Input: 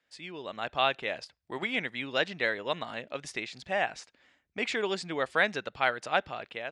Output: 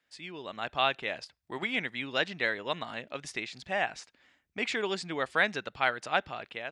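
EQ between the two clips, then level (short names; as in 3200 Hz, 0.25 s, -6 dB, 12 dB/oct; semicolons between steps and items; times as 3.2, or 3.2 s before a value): bell 530 Hz -3 dB 0.77 oct; 0.0 dB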